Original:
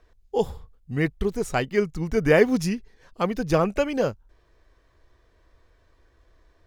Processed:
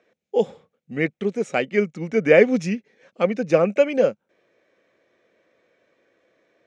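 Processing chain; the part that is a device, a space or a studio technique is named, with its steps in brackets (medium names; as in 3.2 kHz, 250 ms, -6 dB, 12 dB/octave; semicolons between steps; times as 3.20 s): 3.27–3.75 s: band-stop 3.3 kHz, Q 7.3; television speaker (cabinet simulation 170–6900 Hz, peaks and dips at 210 Hz +4 dB, 540 Hz +9 dB, 1 kHz -8 dB, 2.3 kHz +8 dB, 4.7 kHz -8 dB)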